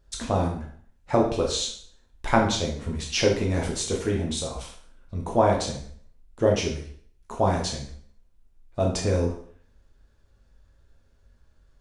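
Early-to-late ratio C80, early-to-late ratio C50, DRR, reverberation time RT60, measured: 10.0 dB, 6.0 dB, -1.0 dB, 0.55 s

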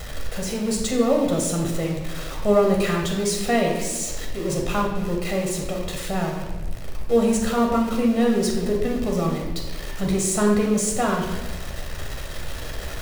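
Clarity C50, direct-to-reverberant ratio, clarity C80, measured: 3.5 dB, -0.5 dB, 5.5 dB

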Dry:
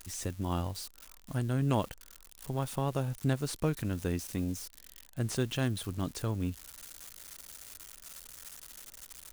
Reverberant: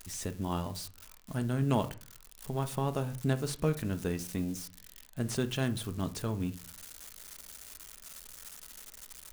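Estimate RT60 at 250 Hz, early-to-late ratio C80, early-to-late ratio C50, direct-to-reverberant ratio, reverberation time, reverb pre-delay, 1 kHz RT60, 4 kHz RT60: 0.55 s, 22.0 dB, 17.0 dB, 9.5 dB, 0.40 s, 5 ms, 0.45 s, 0.25 s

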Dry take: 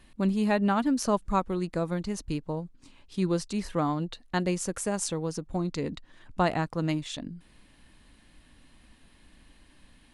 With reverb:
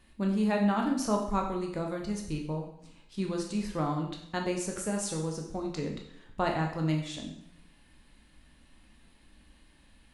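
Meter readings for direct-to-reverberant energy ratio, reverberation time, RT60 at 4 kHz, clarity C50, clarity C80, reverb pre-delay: 1.0 dB, 0.75 s, 0.70 s, 6.5 dB, 9.0 dB, 5 ms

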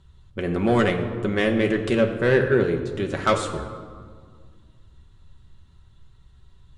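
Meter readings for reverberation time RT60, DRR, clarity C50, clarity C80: 1.8 s, 2.0 dB, 8.5 dB, 9.5 dB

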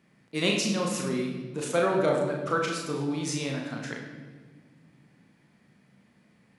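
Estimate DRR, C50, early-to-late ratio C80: -0.5 dB, 3.5 dB, 5.5 dB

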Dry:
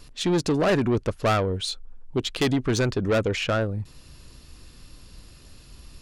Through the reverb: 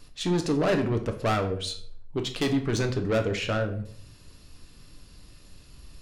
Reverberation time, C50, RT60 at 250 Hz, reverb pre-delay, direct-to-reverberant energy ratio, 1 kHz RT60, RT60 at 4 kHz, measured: 0.60 s, 11.0 dB, 0.70 s, 7 ms, 5.0 dB, 0.50 s, 0.40 s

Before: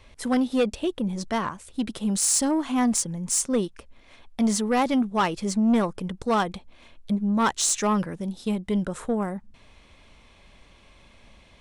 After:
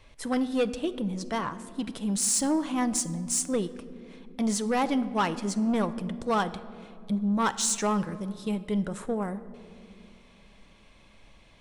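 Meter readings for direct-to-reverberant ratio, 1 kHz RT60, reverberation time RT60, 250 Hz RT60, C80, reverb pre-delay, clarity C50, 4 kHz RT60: 10.5 dB, 2.1 s, 2.6 s, 3.6 s, 16.0 dB, 6 ms, 14.5 dB, 1.3 s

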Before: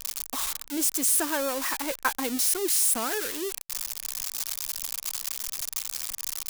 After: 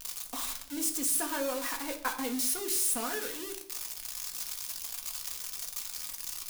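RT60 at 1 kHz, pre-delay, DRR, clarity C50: 0.50 s, 4 ms, 1.5 dB, 10.5 dB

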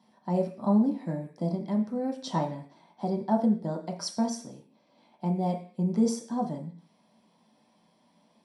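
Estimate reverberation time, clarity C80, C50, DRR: 0.45 s, 15.0 dB, 10.5 dB, 0.5 dB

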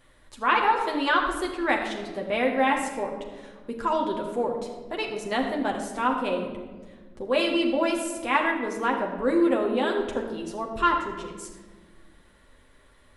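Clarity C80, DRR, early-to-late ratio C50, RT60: 6.5 dB, -0.5 dB, 5.5 dB, 1.5 s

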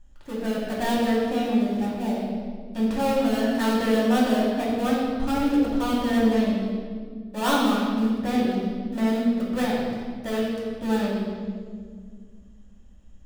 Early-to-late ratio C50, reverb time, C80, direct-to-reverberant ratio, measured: -0.5 dB, 1.9 s, 1.5 dB, -6.5 dB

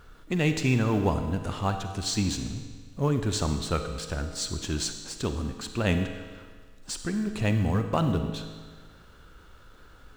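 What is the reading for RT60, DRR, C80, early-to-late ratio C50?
1.6 s, 6.5 dB, 8.5 dB, 7.0 dB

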